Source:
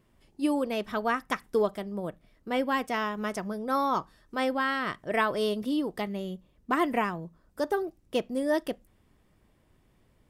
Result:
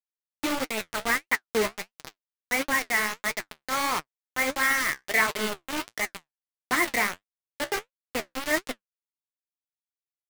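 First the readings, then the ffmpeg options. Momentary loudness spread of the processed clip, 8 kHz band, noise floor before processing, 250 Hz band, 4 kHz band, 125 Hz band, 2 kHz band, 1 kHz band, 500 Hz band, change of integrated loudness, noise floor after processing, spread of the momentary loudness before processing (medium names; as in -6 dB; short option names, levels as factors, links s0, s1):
12 LU, +16.5 dB, -66 dBFS, -5.0 dB, +6.5 dB, -5.5 dB, +8.5 dB, -0.5 dB, -3.5 dB, +3.0 dB, under -85 dBFS, 10 LU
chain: -filter_complex "[0:a]acrossover=split=390[s0][s1];[s1]acrusher=bits=2:mode=log:mix=0:aa=0.000001[s2];[s0][s2]amix=inputs=2:normalize=0,lowpass=f=2100:t=q:w=8.5,acrusher=bits=3:mix=0:aa=0.000001,flanger=delay=6.2:depth=9.7:regen=49:speed=1.5:shape=triangular"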